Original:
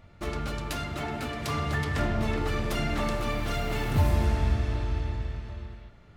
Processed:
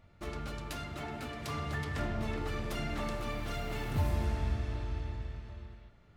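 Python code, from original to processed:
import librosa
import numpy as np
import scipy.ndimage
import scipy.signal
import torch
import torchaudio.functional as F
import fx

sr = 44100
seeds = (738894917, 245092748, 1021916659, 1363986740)

y = x * 10.0 ** (-7.5 / 20.0)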